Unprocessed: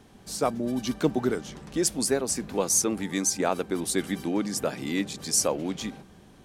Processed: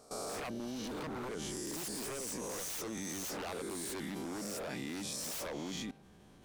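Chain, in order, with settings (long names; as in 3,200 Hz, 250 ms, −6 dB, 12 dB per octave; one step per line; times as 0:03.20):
peak hold with a rise ahead of every peak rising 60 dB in 0.96 s
wave folding −21.5 dBFS
output level in coarse steps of 19 dB
level −2.5 dB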